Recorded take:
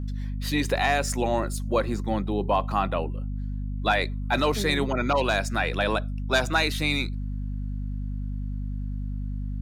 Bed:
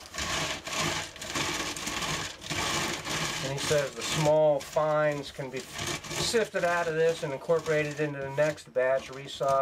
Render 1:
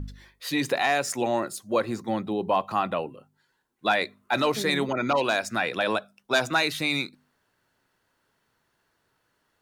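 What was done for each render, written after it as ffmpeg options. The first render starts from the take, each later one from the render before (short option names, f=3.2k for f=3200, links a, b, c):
-af "bandreject=f=50:t=h:w=4,bandreject=f=100:t=h:w=4,bandreject=f=150:t=h:w=4,bandreject=f=200:t=h:w=4,bandreject=f=250:t=h:w=4"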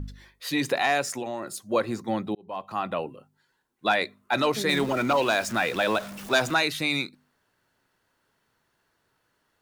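-filter_complex "[0:a]asettb=1/sr,asplit=3[a][b][c];[a]atrim=end=1.014[d];[b]atrim=start=1.01:end=1.61,asetpts=PTS-STARTPTS,afade=t=in:d=0.004:c=qsin,afade=t=out:st=0.596:d=0.004:c=qsin,acompressor=threshold=-28dB:ratio=6:attack=3.2:release=140:knee=1:detection=peak[e];[c]atrim=start=1.606[f];[d][e]acrossfade=d=0.004:c1=hsin:c2=qsin[g];[g][f]acrossfade=d=0.004:c1=qsin:c2=hsin,asettb=1/sr,asplit=3[h][i][j];[h]atrim=end=4.694[k];[i]atrim=start=4.69:end=6.54,asetpts=PTS-STARTPTS,afade=t=in:d=0.004:c=qsin,afade=t=out:st=1.846:d=0.004:c=qsin,aeval=exprs='val(0)+0.5*0.02*sgn(val(0))':c=same[l];[j]atrim=start=6.536[m];[k][l]acrossfade=d=0.004:c1=hsin:c2=qsin[n];[n][m]acrossfade=d=0.004:c1=qsin:c2=hsin,asplit=2[o][p];[o]atrim=end=2.35,asetpts=PTS-STARTPTS,afade=t=out:st=2.346:d=0.004:c=hsin[q];[p]atrim=start=2.35,asetpts=PTS-STARTPTS,afade=t=in:d=0.7[r];[q][r]concat=n=2:v=0:a=1"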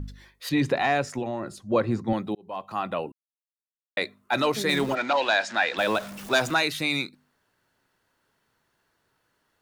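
-filter_complex "[0:a]asettb=1/sr,asplit=3[a][b][c];[a]atrim=end=0.494[d];[b]atrim=start=0.49:end=2.13,asetpts=PTS-STARTPTS,afade=t=in:d=0.004:c=qsin,afade=t=out:st=1.636:d=0.004:c=qsin,aemphasis=mode=reproduction:type=bsi[e];[c]atrim=start=2.126[f];[d][e]acrossfade=d=0.004:c1=hsin:c2=qsin[g];[g][f]acrossfade=d=0.004:c1=qsin:c2=hsin,asplit=3[h][i][j];[h]afade=t=out:st=4.94:d=0.02[k];[i]highpass=360,equalizer=f=400:t=q:w=4:g=-8,equalizer=f=830:t=q:w=4:g=4,equalizer=f=1.2k:t=q:w=4:g=-5,equalizer=f=1.7k:t=q:w=4:g=6,equalizer=f=3.9k:t=q:w=4:g=4,equalizer=f=5.9k:t=q:w=4:g=-3,lowpass=f=6.5k:w=0.5412,lowpass=f=6.5k:w=1.3066,afade=t=in:st=4.94:d=0.02,afade=t=out:st=5.77:d=0.02[l];[j]afade=t=in:st=5.77:d=0.02[m];[k][l][m]amix=inputs=3:normalize=0,asplit=3[n][o][p];[n]atrim=end=3.12,asetpts=PTS-STARTPTS,afade=t=out:st=3.116:d=0.004:c=hsin[q];[o]atrim=start=3.12:end=3.97,asetpts=PTS-STARTPTS,volume=0[r];[p]atrim=start=3.97,asetpts=PTS-STARTPTS,afade=t=in:d=0.004:c=hsin[s];[q][r][s]concat=n=3:v=0:a=1"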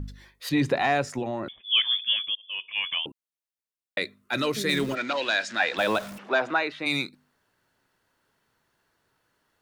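-filter_complex "[0:a]asettb=1/sr,asplit=3[a][b][c];[a]atrim=end=1.484[d];[b]atrim=start=1.48:end=3.06,asetpts=PTS-STARTPTS,afade=t=in:d=0.004:c=qsin,afade=t=out:st=1.576:d=0.004:c=qsin,lowpass=f=3.1k:t=q:w=0.5098,lowpass=f=3.1k:t=q:w=0.6013,lowpass=f=3.1k:t=q:w=0.9,lowpass=f=3.1k:t=q:w=2.563,afreqshift=-3600[e];[c]atrim=start=3.056[f];[d][e]acrossfade=d=0.004:c1=hsin:c2=qsin[g];[g][f]acrossfade=d=0.004:c1=qsin:c2=hsin,asettb=1/sr,asplit=3[h][i][j];[h]atrim=end=3.984[k];[i]atrim=start=3.98:end=5.6,asetpts=PTS-STARTPTS,afade=t=in:d=0.004:c=qsin,afade=t=out:st=1.616:d=0.004:c=qsin,equalizer=f=820:t=o:w=0.77:g=-11.5[l];[j]atrim=start=5.596[m];[k][l]acrossfade=d=0.004:c1=hsin:c2=qsin[n];[n][m]acrossfade=d=0.004:c1=qsin:c2=hsin,asplit=3[o][p][q];[o]afade=t=out:st=6.17:d=0.02[r];[p]highpass=310,lowpass=2.2k,afade=t=in:st=6.17:d=0.02,afade=t=out:st=6.85:d=0.02[s];[q]afade=t=in:st=6.85:d=0.02[t];[r][s][t]amix=inputs=3:normalize=0"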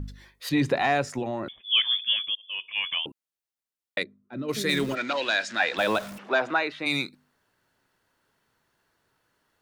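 -filter_complex "[0:a]asplit=3[a][b][c];[a]afade=t=out:st=4.02:d=0.02[d];[b]bandpass=f=190:t=q:w=1.1,afade=t=in:st=4.02:d=0.02,afade=t=out:st=4.48:d=0.02[e];[c]afade=t=in:st=4.48:d=0.02[f];[d][e][f]amix=inputs=3:normalize=0"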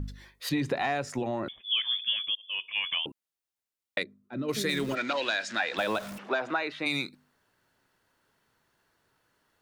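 -af "acompressor=threshold=-25dB:ratio=6"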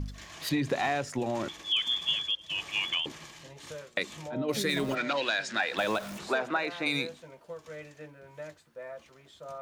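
-filter_complex "[1:a]volume=-16.5dB[a];[0:a][a]amix=inputs=2:normalize=0"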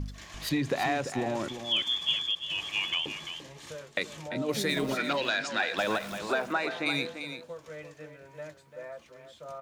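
-af "aecho=1:1:343:0.335"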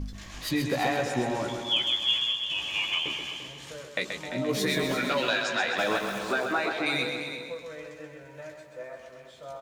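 -filter_complex "[0:a]asplit=2[a][b];[b]adelay=16,volume=-5.5dB[c];[a][c]amix=inputs=2:normalize=0,aecho=1:1:130|260|390|520|650|780:0.501|0.261|0.136|0.0705|0.0366|0.0191"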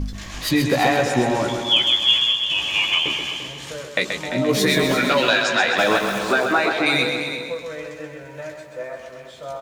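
-af "volume=9dB"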